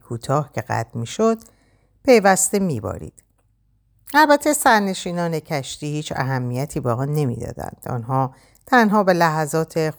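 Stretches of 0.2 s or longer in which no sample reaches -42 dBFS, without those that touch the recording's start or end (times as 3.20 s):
1.49–2.05 s
3.23–4.06 s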